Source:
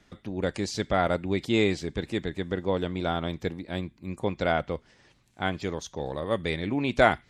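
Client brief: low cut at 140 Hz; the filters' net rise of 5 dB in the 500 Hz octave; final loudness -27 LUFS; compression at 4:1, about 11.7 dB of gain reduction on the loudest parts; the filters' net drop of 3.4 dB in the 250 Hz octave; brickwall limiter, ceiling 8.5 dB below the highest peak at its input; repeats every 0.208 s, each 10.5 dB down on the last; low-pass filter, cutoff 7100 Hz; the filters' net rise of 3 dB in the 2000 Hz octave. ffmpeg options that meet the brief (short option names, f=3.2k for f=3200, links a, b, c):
-af "highpass=140,lowpass=7.1k,equalizer=f=250:t=o:g=-7.5,equalizer=f=500:t=o:g=8,equalizer=f=2k:t=o:g=3.5,acompressor=threshold=-24dB:ratio=4,alimiter=limit=-19.5dB:level=0:latency=1,aecho=1:1:208|416|624:0.299|0.0896|0.0269,volume=5.5dB"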